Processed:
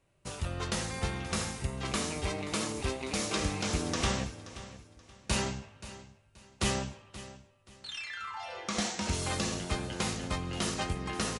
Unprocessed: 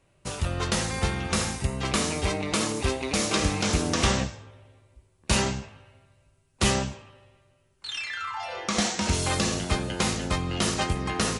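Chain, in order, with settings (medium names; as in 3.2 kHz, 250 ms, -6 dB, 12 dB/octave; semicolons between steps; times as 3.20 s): feedback delay 528 ms, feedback 29%, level -15.5 dB; trim -7 dB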